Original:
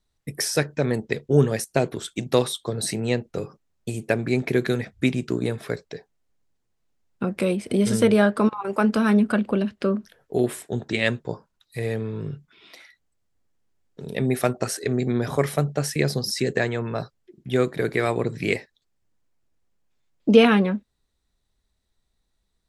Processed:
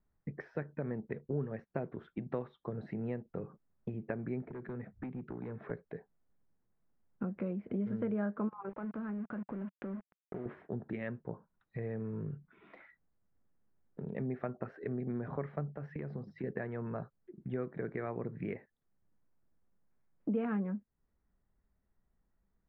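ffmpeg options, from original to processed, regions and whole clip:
-filter_complex "[0:a]asettb=1/sr,asplit=3[a][b][c];[a]atrim=end=4.464[d];[b]atrim=start=4.46:end=5.71,asetpts=PTS-STARTPTS,afade=t=in:d=0.004:c=qsin,afade=t=out:st=1.246:d=0.004:c=qsin,acrossover=split=99|860[e][f][g];[e]acompressor=threshold=-51dB:ratio=4[h];[f]acompressor=threshold=-32dB:ratio=4[i];[g]acompressor=threshold=-44dB:ratio=4[j];[h][i][j]amix=inputs=3:normalize=0,asoftclip=type=hard:threshold=-30.5dB[k];[c]atrim=start=5.706[l];[d][k]acrossfade=d=0.004:c1=hsin:c2=qsin[m];[m][l]acrossfade=d=0.004:c1=qsin:c2=hsin,asettb=1/sr,asplit=3[n][o][p];[n]atrim=end=8.694[q];[o]atrim=start=8.69:end=10.46,asetpts=PTS-STARTPTS,afade=t=in:d=0.004:c=qsin,afade=t=out:st=1.766:d=0.004:c=qsin,acompressor=threshold=-32dB:ratio=4:attack=3.2:release=140:knee=1:detection=peak,aeval=exprs='val(0)*gte(abs(val(0)),0.0133)':c=same[r];[p]atrim=start=10.456[s];[q][r]acrossfade=d=0.004:c1=hsin:c2=qsin[t];[t][s]acrossfade=d=0.004:c1=qsin:c2=hsin,asettb=1/sr,asplit=3[u][v][w];[u]atrim=end=15.754[x];[v]atrim=start=15.75:end=16.44,asetpts=PTS-STARTPTS,afade=t=in:d=0.004:c=qsin,afade=t=out:st=0.686:d=0.004:c=qsin,bandreject=f=51.41:t=h:w=4,bandreject=f=102.82:t=h:w=4,bandreject=f=154.23:t=h:w=4,asoftclip=type=hard:threshold=-10dB,acompressor=threshold=-29dB:ratio=3:attack=3.2:release=140:knee=1:detection=peak[y];[w]atrim=start=16.436[z];[x][y]acrossfade=d=0.004:c1=hsin:c2=qsin[aa];[aa][z]acrossfade=d=0.004:c1=qsin:c2=hsin,equalizer=f=190:w=2.2:g=6,acompressor=threshold=-37dB:ratio=2.5,lowpass=f=1.8k:w=0.5412,lowpass=f=1.8k:w=1.3066,volume=-3.5dB"

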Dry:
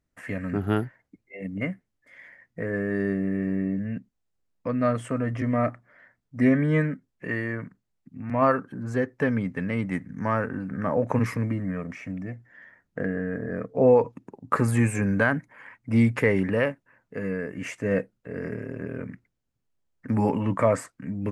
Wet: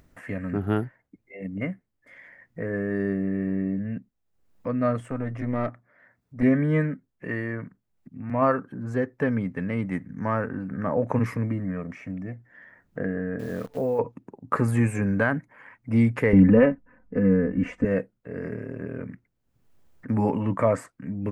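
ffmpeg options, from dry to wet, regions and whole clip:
-filter_complex "[0:a]asettb=1/sr,asplit=3[a][b][c];[a]atrim=end=5.004[d];[b]atrim=start=5:end=6.43,asetpts=PTS-STARTPTS,afade=t=in:d=0.004:c=qsin,afade=t=out:st=1.426:d=0.004:c=qsin,highpass=46,bandreject=f=3.1k:w=14,aeval=exprs='(tanh(7.94*val(0)+0.6)-tanh(0.6))/7.94':c=same[e];[c]atrim=start=6.426[f];[d][e]acrossfade=d=0.004:c1=hsin:c2=qsin[g];[g][f]acrossfade=d=0.004:c1=qsin:c2=hsin,asettb=1/sr,asplit=3[h][i][j];[h]atrim=end=13.394[k];[i]atrim=start=13.39:end=13.99,asetpts=PTS-STARTPTS,afade=t=in:d=0.004:c=qsin,afade=t=out:st=0.596:d=0.004:c=qsin,acrusher=bits=8:dc=4:mix=0:aa=0.000001,acompressor=threshold=-24dB:ratio=3:attack=3.2:release=140:knee=1:detection=peak[l];[j]atrim=start=13.986[m];[k][l]acrossfade=d=0.004:c1=hsin:c2=qsin[n];[n][m]acrossfade=d=0.004:c1=qsin:c2=hsin,asettb=1/sr,asplit=3[o][p][q];[o]atrim=end=16.334[r];[p]atrim=start=16.33:end=17.85,asetpts=PTS-STARTPTS,afade=t=in:d=0.004:c=qsin,afade=t=out:st=1.516:d=0.004:c=qsin,aemphasis=mode=reproduction:type=riaa,aecho=1:1:4:0.95,atrim=end_sample=67032[s];[q]atrim=start=17.846[t];[r][s]acrossfade=d=0.004:c1=hsin:c2=qsin[u];[u][t]acrossfade=d=0.004:c1=qsin:c2=hsin,acompressor=mode=upward:threshold=-41dB:ratio=2.5,equalizer=f=6.5k:w=0.34:g=-6"

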